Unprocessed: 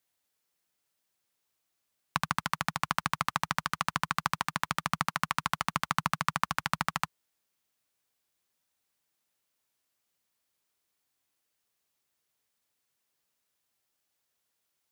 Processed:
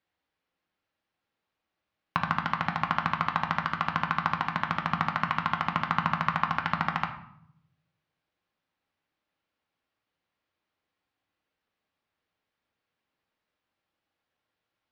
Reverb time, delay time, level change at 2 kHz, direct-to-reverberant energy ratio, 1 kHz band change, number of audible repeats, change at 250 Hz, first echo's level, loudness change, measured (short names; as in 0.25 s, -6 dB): 0.70 s, none, +2.5 dB, 3.5 dB, +4.0 dB, none, +5.5 dB, none, +3.0 dB